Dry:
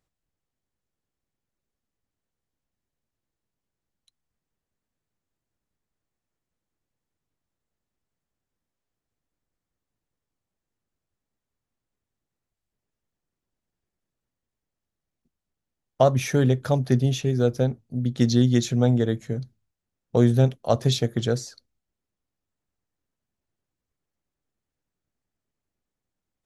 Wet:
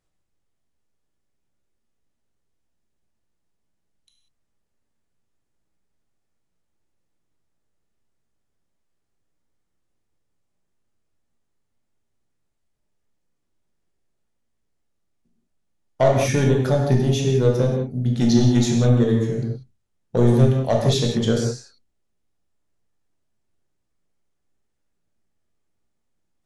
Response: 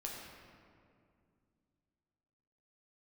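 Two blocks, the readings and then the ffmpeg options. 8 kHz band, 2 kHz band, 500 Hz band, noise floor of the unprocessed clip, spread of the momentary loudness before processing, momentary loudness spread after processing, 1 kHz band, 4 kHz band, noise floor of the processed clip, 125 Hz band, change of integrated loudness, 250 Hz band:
+4.0 dB, +3.5 dB, +4.0 dB, under -85 dBFS, 9 LU, 9 LU, +2.5 dB, +3.0 dB, -73 dBFS, +3.5 dB, +3.5 dB, +3.5 dB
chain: -filter_complex "[0:a]asoftclip=type=tanh:threshold=-11.5dB[a];[1:a]atrim=start_sample=2205,atrim=end_sample=4410,asetrate=22050,aresample=44100[b];[a][b]afir=irnorm=-1:irlink=0,volume=2.5dB"

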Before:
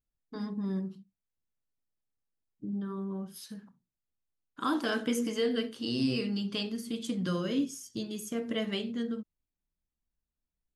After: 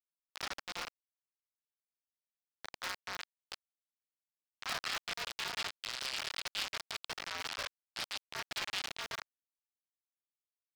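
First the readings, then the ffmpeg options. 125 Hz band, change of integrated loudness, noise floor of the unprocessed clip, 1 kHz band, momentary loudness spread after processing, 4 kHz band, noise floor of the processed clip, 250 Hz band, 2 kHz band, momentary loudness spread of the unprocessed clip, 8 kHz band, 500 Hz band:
-21.0 dB, -6.0 dB, under -85 dBFS, -2.0 dB, 11 LU, +0.5 dB, under -85 dBFS, -29.0 dB, +1.5 dB, 12 LU, 0.0 dB, -16.5 dB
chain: -af "areverse,acompressor=threshold=-38dB:ratio=10,areverse,aecho=1:1:101:0.335,aresample=11025,acrusher=bits=5:mix=0:aa=0.000001,aresample=44100,asoftclip=type=tanh:threshold=-33.5dB,highpass=f=970:w=0.5412,highpass=f=970:w=1.3066,aeval=exprs='val(0)*sgn(sin(2*PI*260*n/s))':c=same,volume=9dB"

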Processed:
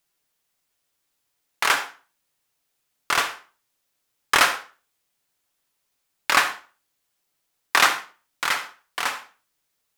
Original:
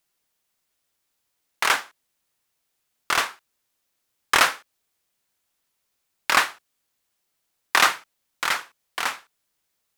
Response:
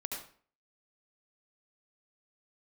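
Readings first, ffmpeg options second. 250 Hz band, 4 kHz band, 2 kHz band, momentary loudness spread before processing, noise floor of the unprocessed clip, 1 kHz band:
+0.5 dB, +0.5 dB, +0.5 dB, 14 LU, -76 dBFS, +0.5 dB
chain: -filter_complex "[0:a]asplit=2[a][b];[1:a]atrim=start_sample=2205,asetrate=57330,aresample=44100,adelay=7[c];[b][c]afir=irnorm=-1:irlink=0,volume=-7dB[d];[a][d]amix=inputs=2:normalize=0"

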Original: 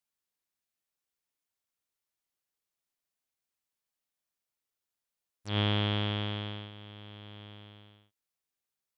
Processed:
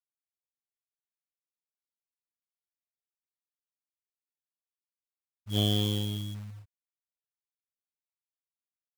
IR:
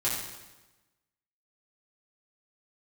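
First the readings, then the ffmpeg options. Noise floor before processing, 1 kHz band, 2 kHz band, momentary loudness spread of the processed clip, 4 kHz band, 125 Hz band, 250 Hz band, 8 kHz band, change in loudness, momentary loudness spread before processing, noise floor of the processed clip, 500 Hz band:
under -85 dBFS, -8.0 dB, -12.5 dB, 16 LU, +1.5 dB, +1.0 dB, +2.0 dB, n/a, +2.0 dB, 20 LU, under -85 dBFS, 0.0 dB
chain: -filter_complex "[0:a]asplit=2[a][b];[1:a]atrim=start_sample=2205,atrim=end_sample=3528[c];[b][c]afir=irnorm=-1:irlink=0,volume=-26.5dB[d];[a][d]amix=inputs=2:normalize=0,afftfilt=real='re*gte(hypot(re,im),0.0562)':imag='im*gte(hypot(re,im),0.0562)':win_size=1024:overlap=0.75,acrusher=bits=4:mode=log:mix=0:aa=0.000001,aeval=exprs='0.141*(cos(1*acos(clip(val(0)/0.141,-1,1)))-cos(1*PI/2))+0.00891*(cos(7*acos(clip(val(0)/0.141,-1,1)))-cos(7*PI/2))':c=same,volume=3dB"

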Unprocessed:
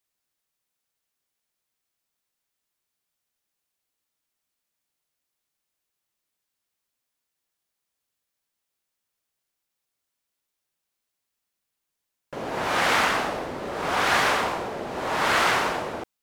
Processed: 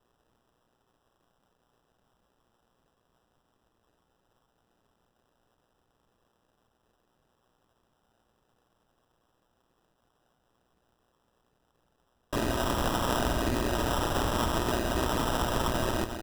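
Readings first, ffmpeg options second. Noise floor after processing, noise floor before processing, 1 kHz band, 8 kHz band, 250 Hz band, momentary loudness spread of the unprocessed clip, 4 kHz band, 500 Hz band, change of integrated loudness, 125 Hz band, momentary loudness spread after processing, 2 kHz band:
-75 dBFS, -83 dBFS, -6.5 dB, -2.5 dB, +3.0 dB, 12 LU, -5.5 dB, -2.5 dB, -5.5 dB, +7.5 dB, 2 LU, -11.5 dB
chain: -filter_complex "[0:a]highshelf=f=11k:g=-9,aecho=1:1:3.1:0.95,acontrast=77,asoftclip=type=tanh:threshold=-18.5dB,acrossover=split=270[a][b];[b]acompressor=threshold=-29dB:ratio=2.5[c];[a][c]amix=inputs=2:normalize=0,asplit=2[d][e];[e]aecho=0:1:174:0.355[f];[d][f]amix=inputs=2:normalize=0,crystalizer=i=6:c=0,aemphasis=mode=reproduction:type=bsi,acrusher=samples=20:mix=1:aa=0.000001,alimiter=limit=-17.5dB:level=0:latency=1:release=69,tremolo=f=120:d=0.71"

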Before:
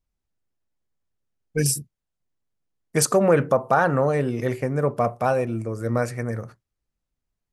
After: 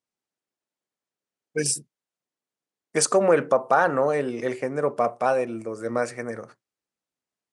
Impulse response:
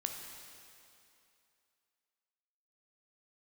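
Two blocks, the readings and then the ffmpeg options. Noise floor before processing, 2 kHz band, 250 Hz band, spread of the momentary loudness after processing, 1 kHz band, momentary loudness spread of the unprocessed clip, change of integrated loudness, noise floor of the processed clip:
-83 dBFS, 0.0 dB, -4.0 dB, 12 LU, 0.0 dB, 10 LU, -1.0 dB, under -85 dBFS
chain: -af "highpass=280,aresample=22050,aresample=44100"

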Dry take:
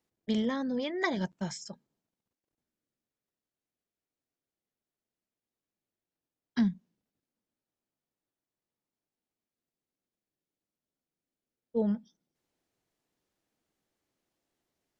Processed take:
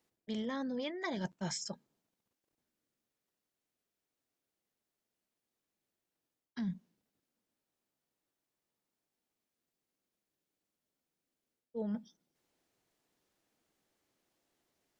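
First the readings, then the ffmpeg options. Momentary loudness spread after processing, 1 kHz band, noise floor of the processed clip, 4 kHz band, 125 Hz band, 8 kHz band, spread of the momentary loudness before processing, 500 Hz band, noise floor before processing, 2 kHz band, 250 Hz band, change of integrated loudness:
9 LU, -5.5 dB, under -85 dBFS, -3.0 dB, -6.0 dB, n/a, 13 LU, -7.0 dB, under -85 dBFS, -7.5 dB, -8.0 dB, -7.5 dB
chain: -af "lowshelf=f=210:g=-4.5,areverse,acompressor=threshold=-38dB:ratio=12,areverse,volume=3.5dB"

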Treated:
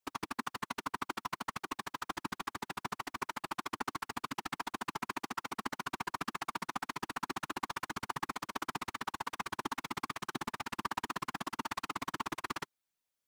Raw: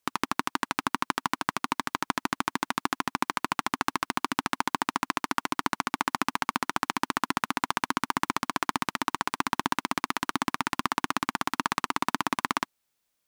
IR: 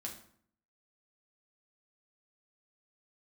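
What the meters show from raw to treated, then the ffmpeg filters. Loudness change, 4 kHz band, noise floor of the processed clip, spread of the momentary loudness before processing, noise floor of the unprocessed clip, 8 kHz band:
-10.0 dB, -10.0 dB, under -85 dBFS, 2 LU, -79 dBFS, -10.0 dB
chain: -af "afftfilt=real='hypot(re,im)*cos(2*PI*random(0))':imag='hypot(re,im)*sin(2*PI*random(1))':win_size=512:overlap=0.75,volume=-4dB"

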